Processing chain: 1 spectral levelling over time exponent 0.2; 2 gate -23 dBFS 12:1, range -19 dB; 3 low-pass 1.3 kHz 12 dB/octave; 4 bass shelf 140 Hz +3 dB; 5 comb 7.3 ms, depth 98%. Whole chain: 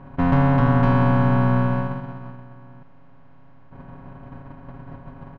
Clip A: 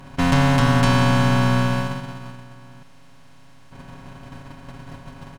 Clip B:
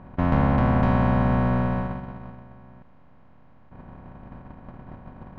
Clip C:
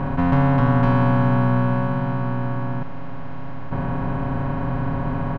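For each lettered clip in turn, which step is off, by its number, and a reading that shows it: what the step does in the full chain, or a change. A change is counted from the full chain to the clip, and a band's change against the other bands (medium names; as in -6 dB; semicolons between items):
3, 2 kHz band +6.0 dB; 5, crest factor change +2.0 dB; 2, momentary loudness spread change +2 LU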